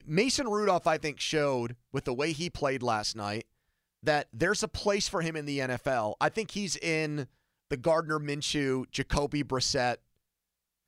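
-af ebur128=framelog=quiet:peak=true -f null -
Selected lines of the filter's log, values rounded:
Integrated loudness:
  I:         -30.1 LUFS
  Threshold: -40.2 LUFS
Loudness range:
  LRA:         1.7 LU
  Threshold: -50.8 LUFS
  LRA low:   -31.6 LUFS
  LRA high:  -29.9 LUFS
True peak:
  Peak:      -12.5 dBFS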